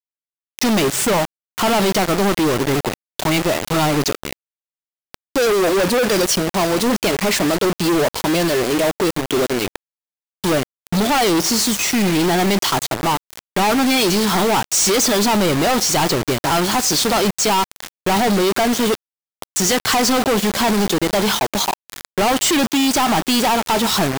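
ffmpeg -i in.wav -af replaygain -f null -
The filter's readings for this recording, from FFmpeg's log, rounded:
track_gain = -0.3 dB
track_peak = 0.131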